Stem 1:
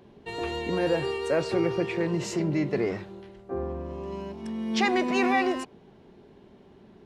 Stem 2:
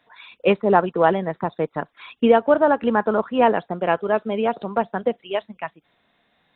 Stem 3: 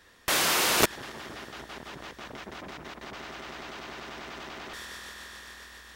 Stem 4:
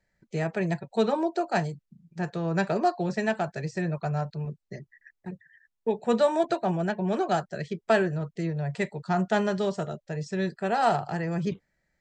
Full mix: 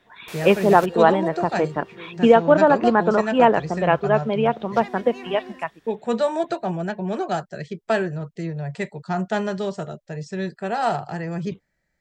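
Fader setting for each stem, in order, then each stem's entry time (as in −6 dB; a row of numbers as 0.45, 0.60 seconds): −14.0, +1.5, −15.5, +1.0 decibels; 0.00, 0.00, 0.00, 0.00 seconds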